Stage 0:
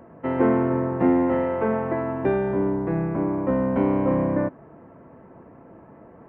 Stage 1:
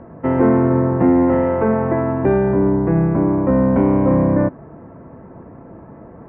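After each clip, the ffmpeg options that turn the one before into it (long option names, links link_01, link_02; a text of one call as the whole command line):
ffmpeg -i in.wav -filter_complex "[0:a]lowpass=2200,lowshelf=frequency=170:gain=8,asplit=2[link_01][link_02];[link_02]alimiter=limit=-14dB:level=0:latency=1,volume=2dB[link_03];[link_01][link_03]amix=inputs=2:normalize=0,volume=-1dB" out.wav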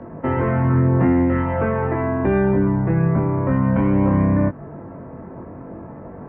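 ffmpeg -i in.wav -filter_complex "[0:a]acrossover=split=170|1200[link_01][link_02][link_03];[link_02]acompressor=threshold=-24dB:ratio=6[link_04];[link_01][link_04][link_03]amix=inputs=3:normalize=0,flanger=delay=20:depth=2.6:speed=0.46,volume=6dB" out.wav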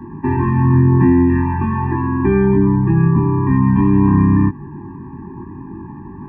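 ffmpeg -i in.wav -af "afftfilt=real='re*eq(mod(floor(b*sr/1024/390),2),0)':imag='im*eq(mod(floor(b*sr/1024/390),2),0)':win_size=1024:overlap=0.75,volume=5dB" out.wav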